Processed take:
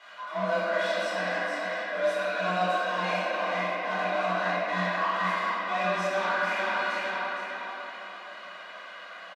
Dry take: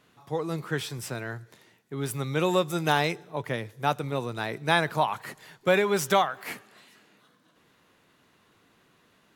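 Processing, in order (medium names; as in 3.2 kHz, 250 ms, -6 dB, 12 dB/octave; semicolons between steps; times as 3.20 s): high-pass 770 Hz 12 dB/octave; comb 2.2 ms, depth 95%; feedback delay 457 ms, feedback 30%, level -16 dB; reverse; compression 5:1, threshold -38 dBFS, peak gain reduction 18.5 dB; reverse; hard clipper -35 dBFS, distortion -14 dB; waveshaping leveller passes 3; reverberation RT60 3.3 s, pre-delay 4 ms, DRR -11 dB; frequency shift +180 Hz; tape spacing loss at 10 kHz 24 dB; trim +2.5 dB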